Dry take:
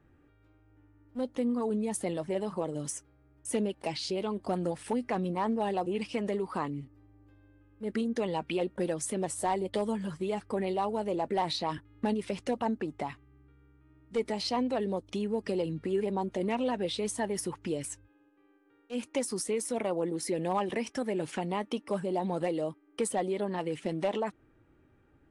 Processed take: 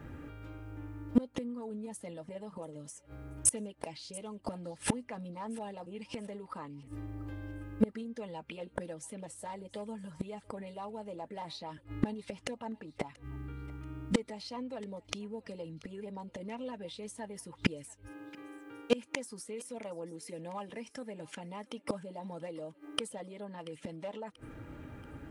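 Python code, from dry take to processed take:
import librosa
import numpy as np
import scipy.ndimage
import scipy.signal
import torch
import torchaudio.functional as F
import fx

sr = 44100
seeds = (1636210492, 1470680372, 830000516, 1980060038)

y = fx.notch_comb(x, sr, f0_hz=370.0)
y = fx.gate_flip(y, sr, shuts_db=-31.0, range_db=-28)
y = fx.echo_thinned(y, sr, ms=684, feedback_pct=45, hz=910.0, wet_db=-20.0)
y = y * 10.0 ** (18.0 / 20.0)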